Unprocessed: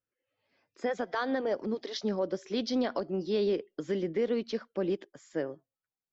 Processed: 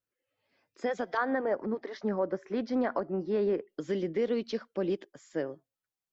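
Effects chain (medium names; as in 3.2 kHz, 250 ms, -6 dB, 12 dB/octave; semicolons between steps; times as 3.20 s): 1.17–3.69 s: FFT filter 470 Hz 0 dB, 940 Hz +4 dB, 1.9 kHz +3 dB, 3.3 kHz -14 dB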